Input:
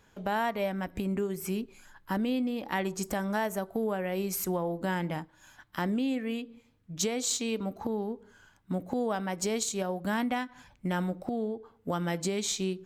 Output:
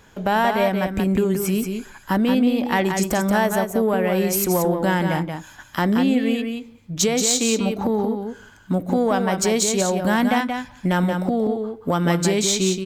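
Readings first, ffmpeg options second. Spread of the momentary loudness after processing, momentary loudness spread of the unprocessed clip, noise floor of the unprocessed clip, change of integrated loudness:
8 LU, 7 LU, −64 dBFS, +11.5 dB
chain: -filter_complex "[0:a]asplit=2[link_01][link_02];[link_02]asoftclip=type=tanh:threshold=-26dB,volume=-4dB[link_03];[link_01][link_03]amix=inputs=2:normalize=0,aecho=1:1:179:0.501,volume=7dB"

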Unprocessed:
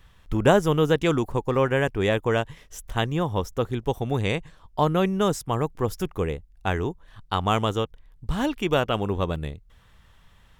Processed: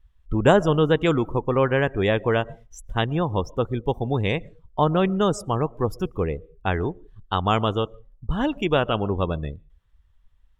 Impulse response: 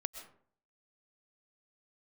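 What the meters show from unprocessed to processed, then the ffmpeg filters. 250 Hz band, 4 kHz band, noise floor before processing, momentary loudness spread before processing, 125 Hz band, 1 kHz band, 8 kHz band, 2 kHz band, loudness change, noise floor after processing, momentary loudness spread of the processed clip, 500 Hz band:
+1.5 dB, +0.5 dB, −56 dBFS, 11 LU, +1.5 dB, +1.5 dB, −4.0 dB, +1.0 dB, +1.5 dB, −59 dBFS, 10 LU, +1.5 dB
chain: -filter_complex "[0:a]asplit=2[link_01][link_02];[1:a]atrim=start_sample=2205[link_03];[link_02][link_03]afir=irnorm=-1:irlink=0,volume=-8dB[link_04];[link_01][link_04]amix=inputs=2:normalize=0,afftdn=noise_reduction=21:noise_floor=-35,volume=-1dB"

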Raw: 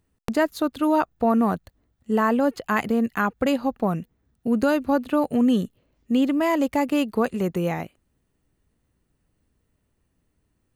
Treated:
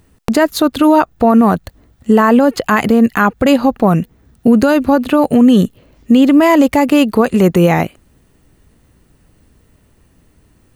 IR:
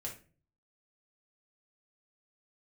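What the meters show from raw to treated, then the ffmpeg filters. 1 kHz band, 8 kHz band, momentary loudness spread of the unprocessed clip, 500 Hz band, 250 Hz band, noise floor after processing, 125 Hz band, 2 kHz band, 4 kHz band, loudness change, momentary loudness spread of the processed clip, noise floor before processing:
+10.5 dB, can't be measured, 7 LU, +11.0 dB, +12.0 dB, −53 dBFS, +14.0 dB, +10.5 dB, +12.5 dB, +11.5 dB, 8 LU, −72 dBFS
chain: -filter_complex "[0:a]asplit=2[link_01][link_02];[link_02]acompressor=threshold=-32dB:ratio=6,volume=0.5dB[link_03];[link_01][link_03]amix=inputs=2:normalize=0,alimiter=level_in=14dB:limit=-1dB:release=50:level=0:latency=1,volume=-1dB"

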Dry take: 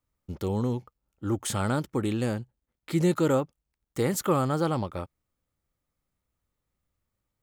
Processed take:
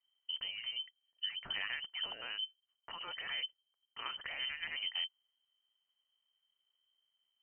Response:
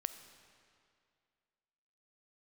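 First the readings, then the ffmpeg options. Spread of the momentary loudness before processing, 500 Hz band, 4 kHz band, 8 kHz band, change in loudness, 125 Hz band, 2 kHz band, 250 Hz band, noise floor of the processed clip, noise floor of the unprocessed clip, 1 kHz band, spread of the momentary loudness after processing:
14 LU, −31.0 dB, +7.5 dB, below −40 dB, −11.5 dB, below −35 dB, −0.5 dB, −39.5 dB, below −85 dBFS, −84 dBFS, −17.5 dB, 7 LU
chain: -af "afftfilt=real='re*lt(hypot(re,im),0.178)':imag='im*lt(hypot(re,im),0.178)':win_size=1024:overlap=0.75,equalizer=frequency=125:width_type=o:width=1:gain=10,equalizer=frequency=500:width_type=o:width=1:gain=-11,equalizer=frequency=1000:width_type=o:width=1:gain=-4,lowpass=frequency=2700:width_type=q:width=0.5098,lowpass=frequency=2700:width_type=q:width=0.6013,lowpass=frequency=2700:width_type=q:width=0.9,lowpass=frequency=2700:width_type=q:width=2.563,afreqshift=-3200,volume=-3dB"

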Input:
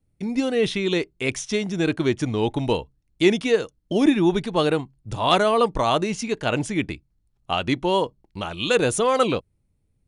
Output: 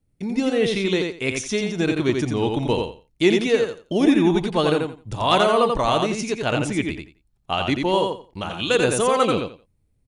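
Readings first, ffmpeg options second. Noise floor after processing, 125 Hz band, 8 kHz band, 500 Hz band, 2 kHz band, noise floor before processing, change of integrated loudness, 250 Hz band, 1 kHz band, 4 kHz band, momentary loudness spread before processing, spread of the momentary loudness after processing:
−66 dBFS, +1.5 dB, +1.5 dB, +1.5 dB, +1.5 dB, −70 dBFS, +1.5 dB, +1.5 dB, +1.5 dB, +1.5 dB, 9 LU, 9 LU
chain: -af "aecho=1:1:87|174|261:0.596|0.113|0.0215"

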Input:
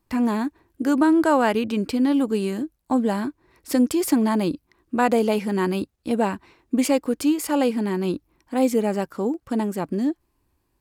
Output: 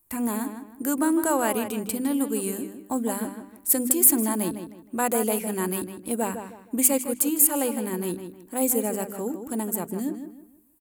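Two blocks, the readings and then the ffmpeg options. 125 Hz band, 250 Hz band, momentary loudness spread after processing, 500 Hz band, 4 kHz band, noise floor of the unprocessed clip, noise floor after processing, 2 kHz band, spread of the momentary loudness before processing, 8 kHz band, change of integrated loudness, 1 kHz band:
−6.0 dB, −6.0 dB, 14 LU, −5.0 dB, −5.5 dB, −72 dBFS, −53 dBFS, −5.0 dB, 9 LU, +12.5 dB, −2.0 dB, −5.0 dB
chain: -filter_complex "[0:a]bandreject=frequency=50:width_type=h:width=6,bandreject=frequency=100:width_type=h:width=6,bandreject=frequency=150:width_type=h:width=6,bandreject=frequency=200:width_type=h:width=6,bandreject=frequency=250:width_type=h:width=6,bandreject=frequency=300:width_type=h:width=6,asplit=2[link_01][link_02];[link_02]adelay=157,lowpass=frequency=3700:poles=1,volume=-8.5dB,asplit=2[link_03][link_04];[link_04]adelay=157,lowpass=frequency=3700:poles=1,volume=0.32,asplit=2[link_05][link_06];[link_06]adelay=157,lowpass=frequency=3700:poles=1,volume=0.32,asplit=2[link_07][link_08];[link_08]adelay=157,lowpass=frequency=3700:poles=1,volume=0.32[link_09];[link_01][link_03][link_05][link_07][link_09]amix=inputs=5:normalize=0,aexciter=amount=12:drive=4.2:freq=7400,volume=-5.5dB"

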